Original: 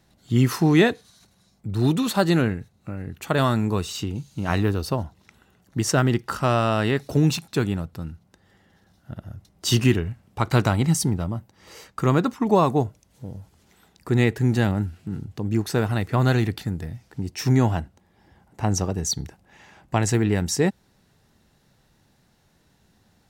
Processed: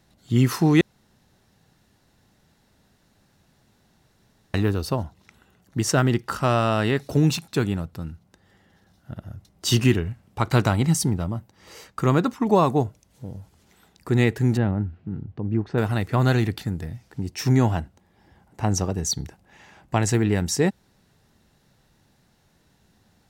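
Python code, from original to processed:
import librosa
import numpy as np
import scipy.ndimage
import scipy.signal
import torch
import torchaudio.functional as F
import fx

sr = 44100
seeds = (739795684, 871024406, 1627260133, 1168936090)

y = fx.spacing_loss(x, sr, db_at_10k=40, at=(14.57, 15.78))
y = fx.edit(y, sr, fx.room_tone_fill(start_s=0.81, length_s=3.73), tone=tone)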